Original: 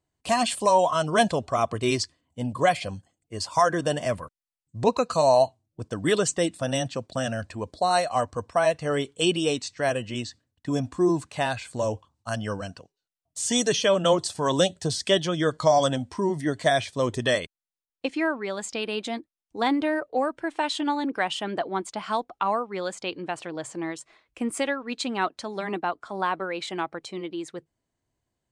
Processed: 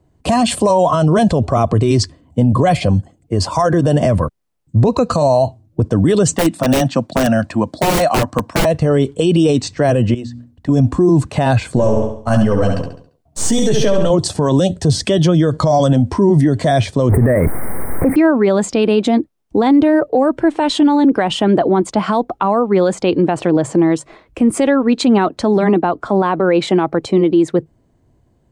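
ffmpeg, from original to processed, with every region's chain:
-filter_complex "[0:a]asettb=1/sr,asplit=3[s0][s1][s2];[s0]atrim=end=6.364[s3];[s1]atrim=start=6.36:end=8.65,asetpts=PTS-STARTPTS,afade=t=in:d=0.004:c=qsin,afade=t=out:st=2.286:d=0.004:c=qsin,highpass=220,equalizer=f=430:t=o:w=0.61:g=-14,aeval=exprs='(mod(11.9*val(0)+1,2)-1)/11.9':c=same[s4];[s2]atrim=start=8.646[s5];[s3][s4]acrossfade=d=0.004:c1=hsin:c2=qsin[s6];[s6][s5]acrossfade=d=0.004:c1=qsin:c2=hsin,asettb=1/sr,asplit=3[s7][s8][s9];[s7]atrim=end=10.144[s10];[s8]atrim=start=10.14:end=10.69,asetpts=PTS-STARTPTS,afade=t=in:d=0.004:c=qsin,afade=t=out:st=0.546:d=0.004:c=qsin,bandreject=f=60:t=h:w=6,bandreject=f=120:t=h:w=6,bandreject=f=180:t=h:w=6,bandreject=f=240:t=h:w=6,bandreject=f=300:t=h:w=6,acompressor=threshold=0.00398:ratio=4:attack=3.2:release=140:knee=1:detection=peak[s11];[s9]atrim=start=10.686[s12];[s10][s11]acrossfade=d=0.004:c1=hsin:c2=qsin[s13];[s13][s12]acrossfade=d=0.004:c1=qsin:c2=hsin,asettb=1/sr,asplit=3[s14][s15][s16];[s14]atrim=end=11.754[s17];[s15]atrim=start=11.75:end=14.1,asetpts=PTS-STARTPTS,afade=t=in:d=0.004:c=qsin,afade=t=out:st=2.346:d=0.004:c=qsin,aeval=exprs='if(lt(val(0),0),0.708*val(0),val(0))':c=same,asplit=2[s18][s19];[s19]adelay=14,volume=0.447[s20];[s18][s20]amix=inputs=2:normalize=0,atrim=end_sample=103635,aecho=1:1:69|138|207|276|345:0.501|0.2|0.0802|0.0321|0.0128,atrim=end_sample=103635[s21];[s16]atrim=start=14.096[s22];[s17][s21]acrossfade=d=0.004:c1=hsin:c2=qsin[s23];[s23][s22]acrossfade=d=0.004:c1=qsin:c2=hsin,asettb=1/sr,asplit=3[s24][s25][s26];[s24]atrim=end=17.094[s27];[s25]atrim=start=17.09:end=18.16,asetpts=PTS-STARTPTS,afade=t=in:d=0.004:c=qsin,afade=t=out:st=1.066:d=0.004:c=qsin,aeval=exprs='val(0)+0.5*0.0376*sgn(val(0))':c=same,asuperstop=centerf=4500:order=20:qfactor=0.71[s28];[s26]atrim=start=18.156[s29];[s27][s28]acrossfade=d=0.004:c1=hsin:c2=qsin[s30];[s30][s29]acrossfade=d=0.004:c1=qsin:c2=hsin,tiltshelf=f=970:g=9,acrossover=split=140|3000[s31][s32][s33];[s32]acompressor=threshold=0.0631:ratio=2[s34];[s31][s34][s33]amix=inputs=3:normalize=0,alimiter=level_in=11.9:limit=0.891:release=50:level=0:latency=1,volume=0.631"

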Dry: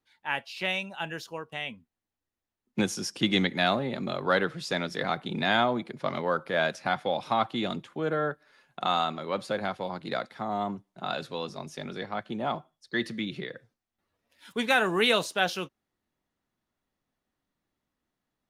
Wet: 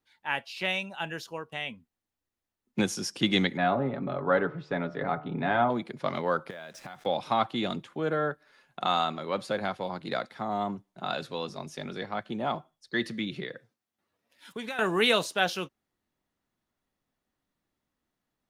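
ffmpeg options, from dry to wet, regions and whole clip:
-filter_complex "[0:a]asettb=1/sr,asplit=3[s0][s1][s2];[s0]atrim=end=3.574[s3];[s1]atrim=start=3.57:end=5.7,asetpts=PTS-STARTPTS,afade=t=in:d=0.004:c=qsin,afade=t=out:st=2.126:d=0.004:c=qsin,lowpass=1500,aecho=1:1:7.1:0.44,atrim=end_sample=93933,bandreject=f=74.5:t=h:w=4,bandreject=f=149:t=h:w=4,bandreject=f=223.5:t=h:w=4,bandreject=f=298:t=h:w=4,bandreject=f=372.5:t=h:w=4,bandreject=f=447:t=h:w=4,bandreject=f=521.5:t=h:w=4,bandreject=f=596:t=h:w=4,bandreject=f=670.5:t=h:w=4,bandreject=f=745:t=h:w=4,bandreject=f=819.5:t=h:w=4,bandreject=f=894:t=h:w=4,bandreject=f=968.5:t=h:w=4,bandreject=f=1043:t=h:w=4,bandreject=f=1117.5:t=h:w=4,bandreject=f=1192:t=h:w=4,bandreject=f=1266.5:t=h:w=4,bandreject=f=1341:t=h:w=4,bandreject=f=1415.5:t=h:w=4,bandreject=f=1490:t=h:w=4[s4];[s2]atrim=start=5.696[s5];[s3][s4]acrossfade=d=0.004:c1=hsin:c2=qsin[s6];[s6][s5]acrossfade=d=0.004:c1=qsin:c2=hsin,asettb=1/sr,asplit=3[s7][s8][s9];[s7]atrim=end=6.504[s10];[s8]atrim=start=6.5:end=7.06,asetpts=PTS-STARTPTS,afade=t=in:d=0.004:c=qsin,afade=t=out:st=0.556:d=0.004:c=qsin,acrusher=bits=7:mix=0:aa=0.5,bandreject=f=4400:w=18,acompressor=threshold=0.0112:ratio=8:attack=3.2:release=140:knee=1:detection=peak[s11];[s9]atrim=start=7.056[s12];[s10][s11]acrossfade=d=0.004:c1=hsin:c2=qsin[s13];[s13][s12]acrossfade=d=0.004:c1=qsin:c2=hsin,asettb=1/sr,asplit=3[s14][s15][s16];[s14]atrim=end=13.534[s17];[s15]atrim=start=13.53:end=14.79,asetpts=PTS-STARTPTS,afade=t=in:d=0.004:c=qsin,afade=t=out:st=1.256:d=0.004:c=qsin,highpass=120,acompressor=threshold=0.0224:ratio=5:attack=3.2:release=140:knee=1:detection=peak[s18];[s16]atrim=start=14.786[s19];[s17][s18]acrossfade=d=0.004:c1=hsin:c2=qsin[s20];[s20][s19]acrossfade=d=0.004:c1=qsin:c2=hsin"

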